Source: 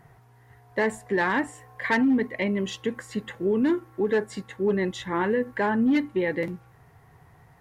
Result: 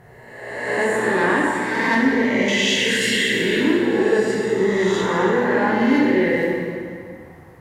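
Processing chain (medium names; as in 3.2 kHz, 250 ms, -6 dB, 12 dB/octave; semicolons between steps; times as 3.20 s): reverse spectral sustain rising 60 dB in 1.35 s; 2.48–3.60 s: resonant high shelf 1.6 kHz +12.5 dB, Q 3; peak limiter -14 dBFS, peak gain reduction 9 dB; plate-style reverb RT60 2.3 s, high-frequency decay 0.75×, DRR -3 dB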